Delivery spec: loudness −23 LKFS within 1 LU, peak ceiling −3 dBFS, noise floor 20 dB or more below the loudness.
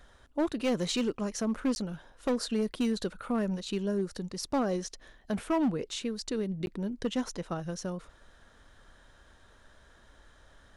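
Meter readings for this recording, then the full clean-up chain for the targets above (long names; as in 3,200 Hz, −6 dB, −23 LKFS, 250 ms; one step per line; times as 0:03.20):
share of clipped samples 1.4%; peaks flattened at −23.0 dBFS; number of dropouts 2; longest dropout 11 ms; integrated loudness −32.5 LKFS; sample peak −23.0 dBFS; target loudness −23.0 LKFS
→ clipped peaks rebuilt −23 dBFS
repair the gap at 0:01.75/0:06.66, 11 ms
level +9.5 dB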